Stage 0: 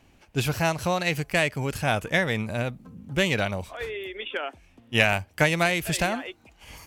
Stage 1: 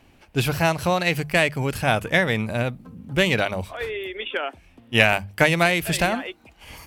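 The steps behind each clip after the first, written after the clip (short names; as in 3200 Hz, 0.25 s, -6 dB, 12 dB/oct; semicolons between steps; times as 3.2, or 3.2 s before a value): bell 6600 Hz -5 dB 0.52 oct; notches 50/100/150/200 Hz; gain +4 dB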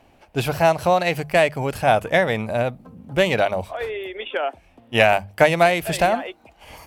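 bell 680 Hz +9.5 dB 1.2 oct; gain -2.5 dB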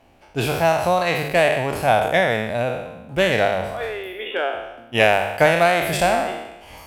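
spectral trails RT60 0.97 s; gain -2 dB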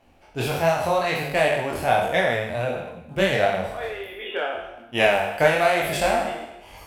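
chorus voices 4, 1.3 Hz, delay 23 ms, depth 3 ms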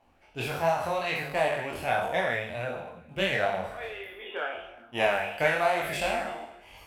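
LFO bell 1.4 Hz 880–2900 Hz +8 dB; gain -8.5 dB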